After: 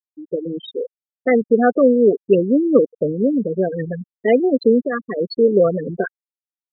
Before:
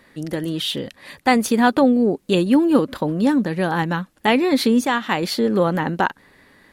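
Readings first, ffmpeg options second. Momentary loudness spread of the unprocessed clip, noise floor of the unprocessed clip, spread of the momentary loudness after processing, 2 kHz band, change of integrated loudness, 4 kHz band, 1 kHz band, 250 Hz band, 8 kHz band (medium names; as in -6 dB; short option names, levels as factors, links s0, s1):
9 LU, -60 dBFS, 13 LU, -5.0 dB, +1.5 dB, under -10 dB, -6.0 dB, -1.0 dB, under -40 dB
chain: -af "superequalizer=7b=2.82:8b=1.58:9b=0.251,afftfilt=real='re*gte(hypot(re,im),0.398)':imag='im*gte(hypot(re,im),0.398)':win_size=1024:overlap=0.75,volume=0.891"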